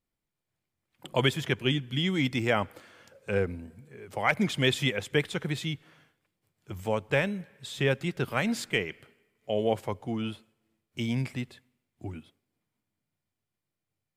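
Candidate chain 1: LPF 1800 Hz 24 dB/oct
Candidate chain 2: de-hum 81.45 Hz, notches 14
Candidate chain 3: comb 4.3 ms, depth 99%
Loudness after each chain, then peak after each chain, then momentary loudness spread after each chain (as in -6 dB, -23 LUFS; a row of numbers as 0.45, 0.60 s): -31.0, -29.5, -26.5 LUFS; -12.5, -10.5, -8.0 dBFS; 15, 16, 18 LU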